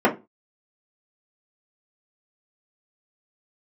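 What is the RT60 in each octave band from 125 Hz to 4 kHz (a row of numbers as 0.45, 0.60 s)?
0.30, 0.30, 0.25, 0.25, 0.20, 0.20 s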